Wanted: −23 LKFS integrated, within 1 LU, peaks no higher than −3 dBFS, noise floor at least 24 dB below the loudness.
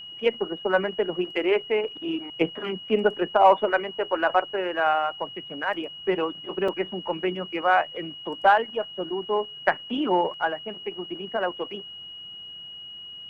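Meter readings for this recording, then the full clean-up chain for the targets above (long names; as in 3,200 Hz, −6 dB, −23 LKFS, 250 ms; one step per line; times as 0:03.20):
number of dropouts 1; longest dropout 4.5 ms; interfering tone 2,900 Hz; level of the tone −38 dBFS; integrated loudness −25.5 LKFS; sample peak −6.0 dBFS; target loudness −23.0 LKFS
→ repair the gap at 0:06.68, 4.5 ms
notch filter 2,900 Hz, Q 30
level +2.5 dB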